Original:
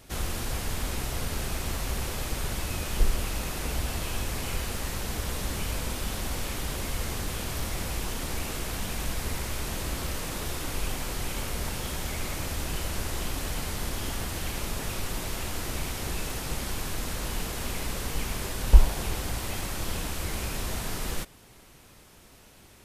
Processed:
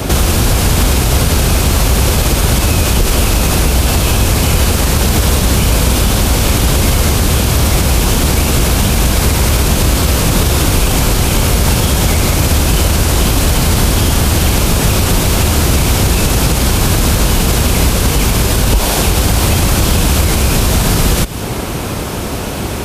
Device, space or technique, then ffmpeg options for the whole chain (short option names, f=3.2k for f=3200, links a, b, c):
mastering chain: -filter_complex "[0:a]highpass=43,equalizer=f=1.9k:t=o:w=0.26:g=-4,acrossover=split=180|1700|3400[a][b][c][d];[a]acompressor=threshold=-43dB:ratio=4[e];[b]acompressor=threshold=-51dB:ratio=4[f];[c]acompressor=threshold=-54dB:ratio=4[g];[d]acompressor=threshold=-43dB:ratio=4[h];[e][f][g][h]amix=inputs=4:normalize=0,acompressor=threshold=-46dB:ratio=1.5,asoftclip=type=tanh:threshold=-23.5dB,tiltshelf=f=1.4k:g=4,alimiter=level_in=34.5dB:limit=-1dB:release=50:level=0:latency=1,volume=-1dB"